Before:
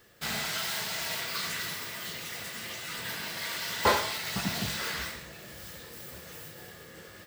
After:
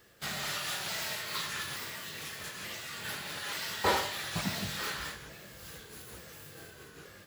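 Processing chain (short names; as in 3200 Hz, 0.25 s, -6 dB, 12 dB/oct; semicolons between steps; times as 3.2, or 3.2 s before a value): repeated pitch sweeps -2.5 st, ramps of 0.882 s; gain -1.5 dB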